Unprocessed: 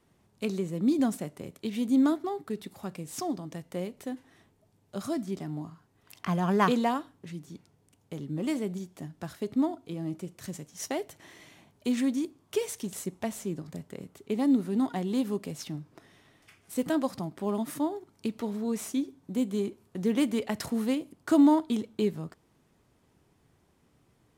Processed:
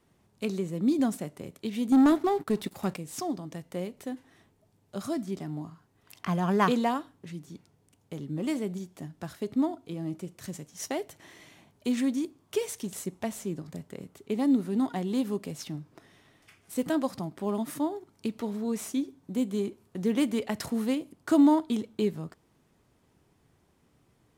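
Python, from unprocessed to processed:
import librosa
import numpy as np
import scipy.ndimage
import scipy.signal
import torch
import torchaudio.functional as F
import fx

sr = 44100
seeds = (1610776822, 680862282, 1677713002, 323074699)

y = fx.leveller(x, sr, passes=2, at=(1.92, 2.98))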